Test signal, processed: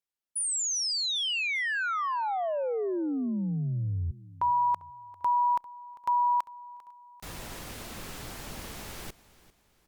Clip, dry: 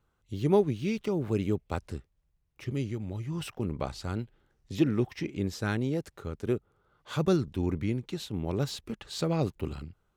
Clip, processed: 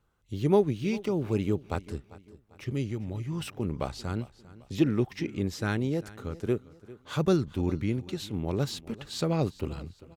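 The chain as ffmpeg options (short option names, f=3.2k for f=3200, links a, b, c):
-af "aecho=1:1:397|794|1191:0.112|0.0449|0.018,volume=1dB" -ar 48000 -c:a libopus -b:a 128k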